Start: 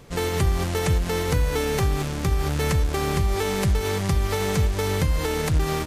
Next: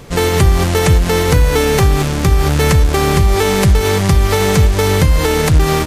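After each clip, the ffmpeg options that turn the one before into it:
-af "acontrast=76,volume=4.5dB"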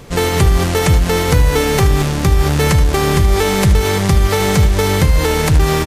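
-af "aecho=1:1:76:0.237,volume=-1dB"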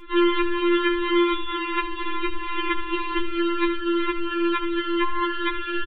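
-af "aresample=8000,aresample=44100,asuperstop=centerf=650:order=20:qfactor=3.9,afftfilt=real='re*4*eq(mod(b,16),0)':imag='im*4*eq(mod(b,16),0)':win_size=2048:overlap=0.75"

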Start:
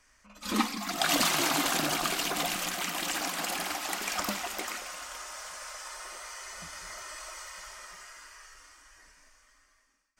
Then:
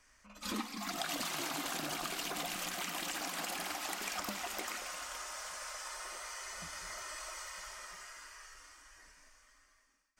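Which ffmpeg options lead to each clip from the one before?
-af "acompressor=threshold=-34dB:ratio=5,volume=-2dB"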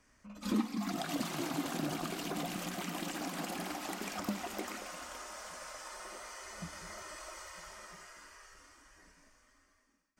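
-af "equalizer=f=190:w=0.38:g=14.5,volume=-4.5dB"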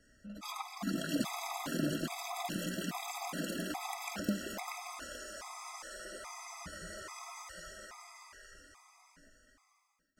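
-af "afftfilt=real='re*gt(sin(2*PI*1.2*pts/sr)*(1-2*mod(floor(b*sr/1024/660),2)),0)':imag='im*gt(sin(2*PI*1.2*pts/sr)*(1-2*mod(floor(b*sr/1024/660),2)),0)':win_size=1024:overlap=0.75,volume=3.5dB"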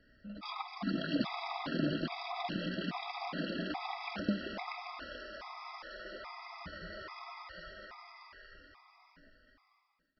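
-af "aresample=11025,aresample=44100,volume=1dB"

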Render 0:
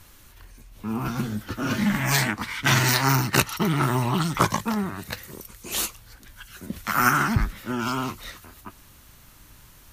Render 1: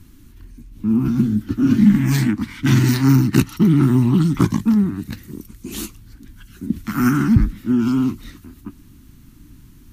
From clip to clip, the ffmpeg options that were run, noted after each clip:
-af "lowshelf=f=400:t=q:w=3:g=12,volume=-5dB"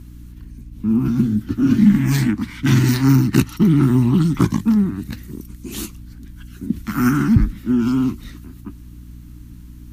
-af "aeval=exprs='val(0)+0.0141*(sin(2*PI*60*n/s)+sin(2*PI*2*60*n/s)/2+sin(2*PI*3*60*n/s)/3+sin(2*PI*4*60*n/s)/4+sin(2*PI*5*60*n/s)/5)':c=same"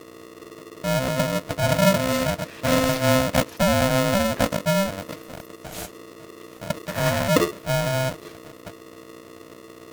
-af "aeval=exprs='val(0)*sgn(sin(2*PI*390*n/s))':c=same,volume=-6dB"

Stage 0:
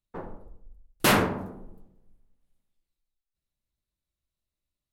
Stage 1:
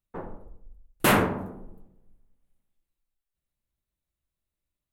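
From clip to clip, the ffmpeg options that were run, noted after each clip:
-af "equalizer=f=5k:w=1.3:g=-8,volume=1dB"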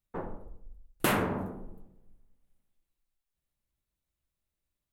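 -af "acompressor=threshold=-24dB:ratio=6"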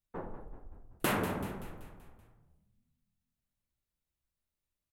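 -filter_complex "[0:a]asplit=7[a][b][c][d][e][f][g];[b]adelay=191,afreqshift=-43,volume=-10.5dB[h];[c]adelay=382,afreqshift=-86,volume=-16.2dB[i];[d]adelay=573,afreqshift=-129,volume=-21.9dB[j];[e]adelay=764,afreqshift=-172,volume=-27.5dB[k];[f]adelay=955,afreqshift=-215,volume=-33.2dB[l];[g]adelay=1146,afreqshift=-258,volume=-38.9dB[m];[a][h][i][j][k][l][m]amix=inputs=7:normalize=0,volume=-4dB"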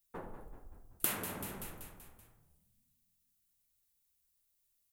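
-af "acompressor=threshold=-37dB:ratio=6,crystalizer=i=5:c=0,volume=-3.5dB"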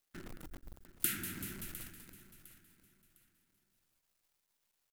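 -af "asuperstop=centerf=710:order=20:qfactor=0.76,acrusher=bits=9:dc=4:mix=0:aa=0.000001,aecho=1:1:706|1412|2118:0.178|0.0516|0.015"

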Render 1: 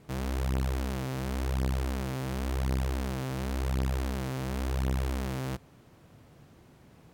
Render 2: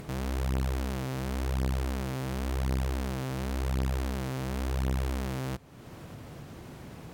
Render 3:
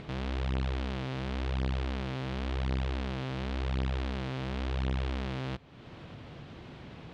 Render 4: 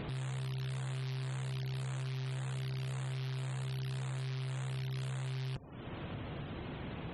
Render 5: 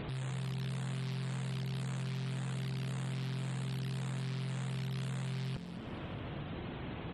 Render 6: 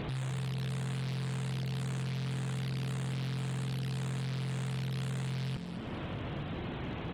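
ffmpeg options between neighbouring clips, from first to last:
-af "acompressor=mode=upward:threshold=-33dB:ratio=2.5"
-af "lowpass=f=3.5k:t=q:w=1.7,volume=-2dB"
-af "aeval=exprs='0.0141*(abs(mod(val(0)/0.0141+3,4)-2)-1)':c=same,afftfilt=real='re*gte(hypot(re,im),0.00178)':imag='im*gte(hypot(re,im),0.00178)':win_size=1024:overlap=0.75,volume=4dB"
-filter_complex "[0:a]asplit=6[a][b][c][d][e][f];[b]adelay=214,afreqshift=44,volume=-9dB[g];[c]adelay=428,afreqshift=88,volume=-15.7dB[h];[d]adelay=642,afreqshift=132,volume=-22.5dB[i];[e]adelay=856,afreqshift=176,volume=-29.2dB[j];[f]adelay=1070,afreqshift=220,volume=-36dB[k];[a][g][h][i][j][k]amix=inputs=6:normalize=0"
-af "volume=36dB,asoftclip=hard,volume=-36dB,volume=4dB"

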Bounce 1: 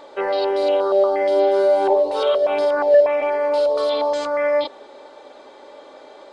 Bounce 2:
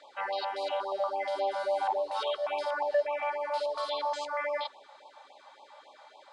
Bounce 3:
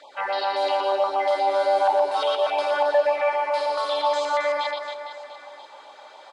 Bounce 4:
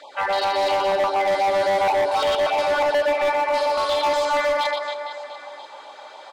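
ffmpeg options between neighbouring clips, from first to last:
-af "lowshelf=f=590:t=q:w=1.5:g=-12,afftfilt=real='re*(1-between(b*sr/1024,310*pow(1700/310,0.5+0.5*sin(2*PI*3.6*pts/sr))/1.41,310*pow(1700/310,0.5+0.5*sin(2*PI*3.6*pts/sr))*1.41))':imag='im*(1-between(b*sr/1024,310*pow(1700/310,0.5+0.5*sin(2*PI*3.6*pts/sr))/1.41,310*pow(1700/310,0.5+0.5*sin(2*PI*3.6*pts/sr))*1.41))':win_size=1024:overlap=0.75,volume=-7.5dB"
-af "aecho=1:1:120|270|457.5|691.9|984.8:0.631|0.398|0.251|0.158|0.1,volume=6.5dB"
-af "volume=21.5dB,asoftclip=hard,volume=-21.5dB,volume=4.5dB"

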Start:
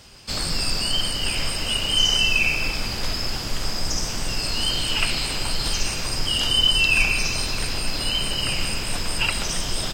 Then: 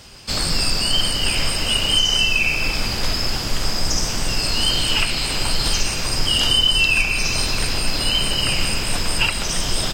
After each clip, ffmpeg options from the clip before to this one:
-af "alimiter=limit=-11dB:level=0:latency=1:release=375,volume=4.5dB"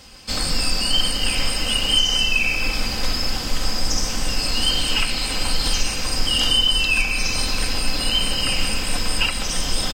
-af "aecho=1:1:3.9:0.46,volume=-2.5dB"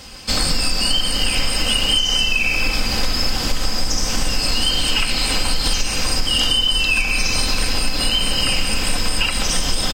-af "acompressor=threshold=-20dB:ratio=6,volume=6.5dB"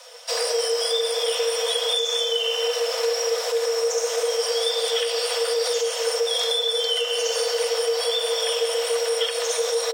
-af "afreqshift=450,volume=-6.5dB"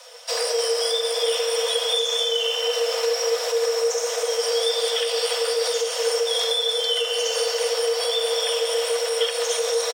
-af "aecho=1:1:297:0.355"

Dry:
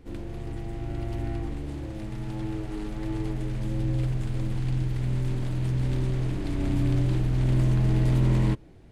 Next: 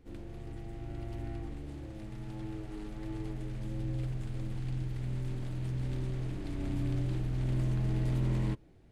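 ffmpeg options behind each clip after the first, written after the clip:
-af "bandreject=f=990:w=22,volume=-8.5dB"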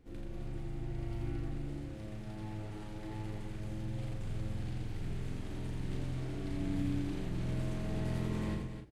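-filter_complex "[0:a]asplit=2[a][b];[b]adelay=36,volume=-5.5dB[c];[a][c]amix=inputs=2:normalize=0,aecho=1:1:84.55|262.4:0.708|0.447,volume=-2.5dB"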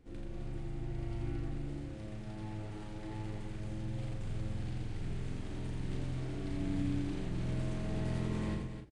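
-af "aresample=22050,aresample=44100"

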